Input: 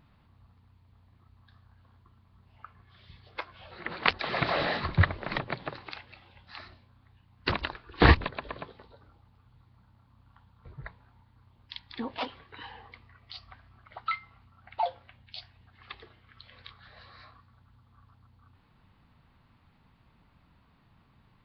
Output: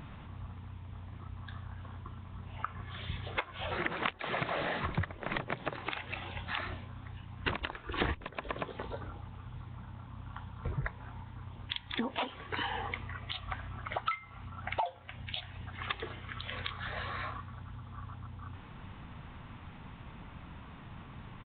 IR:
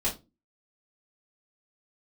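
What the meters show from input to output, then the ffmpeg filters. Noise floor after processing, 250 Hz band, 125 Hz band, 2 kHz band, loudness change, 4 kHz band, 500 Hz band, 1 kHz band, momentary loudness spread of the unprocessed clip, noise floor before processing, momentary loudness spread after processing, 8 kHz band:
−50 dBFS, −5.0 dB, −5.5 dB, −4.0 dB, −9.5 dB, −2.5 dB, −4.5 dB, −3.0 dB, 21 LU, −64 dBFS, 14 LU, can't be measured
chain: -af "acompressor=threshold=-46dB:ratio=12,aresample=8000,aresample=44100,volume=15dB"

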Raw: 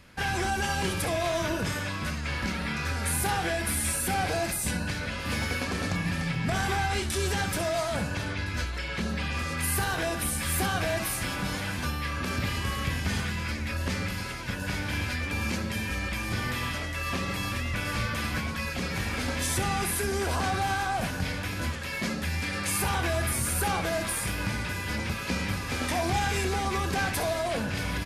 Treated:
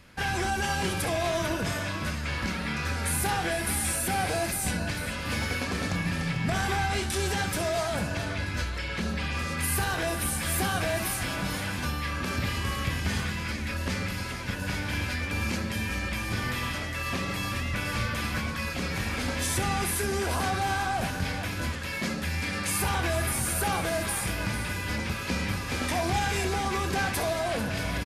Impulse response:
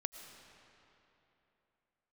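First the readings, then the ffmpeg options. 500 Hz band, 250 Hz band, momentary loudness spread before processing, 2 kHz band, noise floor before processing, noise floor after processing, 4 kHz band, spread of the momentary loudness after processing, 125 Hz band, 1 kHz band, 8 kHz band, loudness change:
0.0 dB, 0.0 dB, 5 LU, 0.0 dB, −34 dBFS, −34 dBFS, 0.0 dB, 4 LU, 0.0 dB, 0.0 dB, 0.0 dB, 0.0 dB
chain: -af "aecho=1:1:446:0.237"

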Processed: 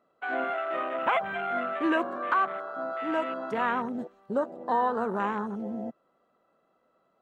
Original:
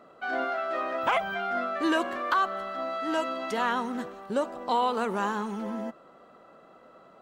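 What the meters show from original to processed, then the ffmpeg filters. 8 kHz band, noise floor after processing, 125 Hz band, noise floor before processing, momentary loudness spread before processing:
below −15 dB, −71 dBFS, can't be measured, −55 dBFS, 7 LU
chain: -af "afwtdn=0.0251"

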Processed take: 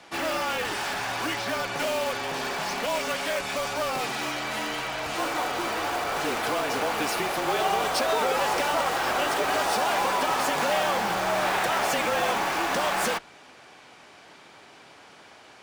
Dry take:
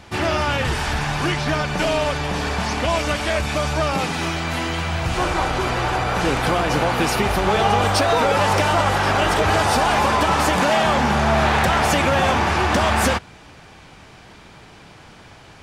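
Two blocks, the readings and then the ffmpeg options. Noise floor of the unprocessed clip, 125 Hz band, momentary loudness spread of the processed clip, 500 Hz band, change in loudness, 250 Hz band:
−45 dBFS, −20.5 dB, 5 LU, −6.5 dB, −7.0 dB, −11.0 dB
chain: -filter_complex "[0:a]highpass=340,asplit=2[link_01][link_02];[link_02]aeval=exprs='(mod(9.44*val(0)+1,2)-1)/9.44':channel_layout=same,volume=-9dB[link_03];[link_01][link_03]amix=inputs=2:normalize=0,afreqshift=-31,volume=-6.5dB"

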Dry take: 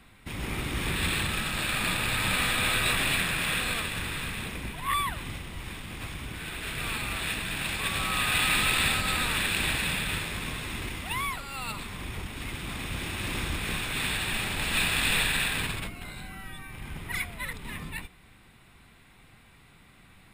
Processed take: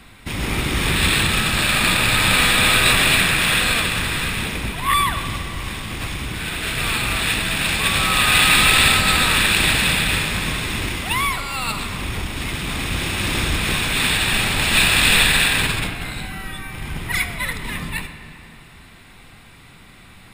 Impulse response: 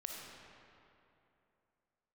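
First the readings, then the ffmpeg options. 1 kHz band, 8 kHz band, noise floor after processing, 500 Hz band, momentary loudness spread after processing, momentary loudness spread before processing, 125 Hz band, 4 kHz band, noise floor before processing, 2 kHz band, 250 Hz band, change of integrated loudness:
+10.5 dB, +11.5 dB, −45 dBFS, +10.5 dB, 14 LU, 14 LU, +10.5 dB, +12.0 dB, −56 dBFS, +11.0 dB, +10.5 dB, +11.0 dB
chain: -filter_complex "[0:a]equalizer=frequency=5300:width=1.1:gain=3.5,asplit=2[link_01][link_02];[1:a]atrim=start_sample=2205[link_03];[link_02][link_03]afir=irnorm=-1:irlink=0,volume=-1dB[link_04];[link_01][link_04]amix=inputs=2:normalize=0,volume=6dB"

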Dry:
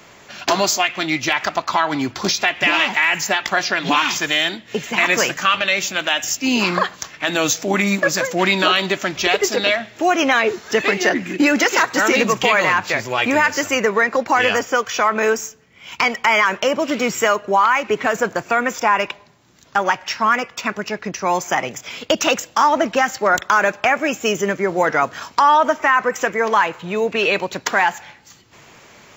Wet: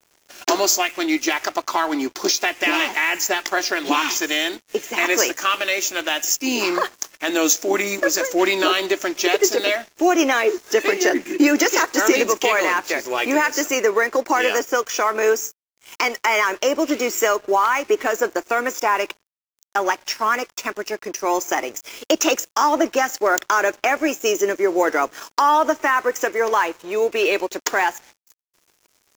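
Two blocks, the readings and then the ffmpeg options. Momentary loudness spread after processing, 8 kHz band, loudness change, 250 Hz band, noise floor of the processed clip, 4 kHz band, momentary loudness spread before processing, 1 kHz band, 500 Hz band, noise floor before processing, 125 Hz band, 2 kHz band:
6 LU, +2.5 dB, −2.0 dB, −0.5 dB, −68 dBFS, −3.0 dB, 6 LU, −3.0 dB, 0.0 dB, −47 dBFS, below −15 dB, −3.5 dB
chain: -af "lowshelf=frequency=220:width_type=q:width=3:gain=-13.5,aeval=exprs='sgn(val(0))*max(abs(val(0))-0.0112,0)':channel_layout=same,aexciter=amount=2.9:drive=1.9:freq=5300,volume=-3.5dB"

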